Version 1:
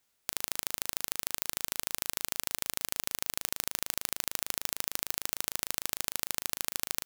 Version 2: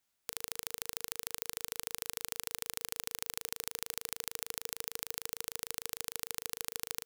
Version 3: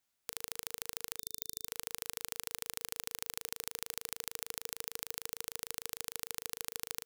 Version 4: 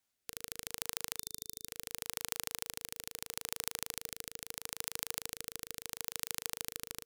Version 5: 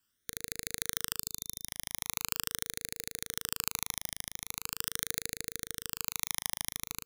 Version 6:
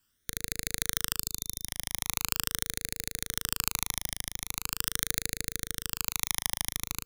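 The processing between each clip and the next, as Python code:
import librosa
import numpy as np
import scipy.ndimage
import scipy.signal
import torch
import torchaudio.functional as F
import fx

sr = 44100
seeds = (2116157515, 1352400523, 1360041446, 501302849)

y1 = fx.notch(x, sr, hz=460.0, q=12.0)
y1 = y1 * librosa.db_to_amplitude(-5.5)
y2 = fx.spec_box(y1, sr, start_s=1.19, length_s=0.48, low_hz=440.0, high_hz=3600.0, gain_db=-15)
y2 = y2 * librosa.db_to_amplitude(-1.5)
y3 = fx.rotary(y2, sr, hz=0.75)
y3 = y3 * librosa.db_to_amplitude(3.5)
y4 = fx.phaser_stages(y3, sr, stages=12, low_hz=450.0, high_hz=1000.0, hz=0.42, feedback_pct=15)
y4 = y4 * librosa.db_to_amplitude(7.5)
y5 = fx.low_shelf(y4, sr, hz=87.0, db=10.0)
y5 = y5 * librosa.db_to_amplitude(4.0)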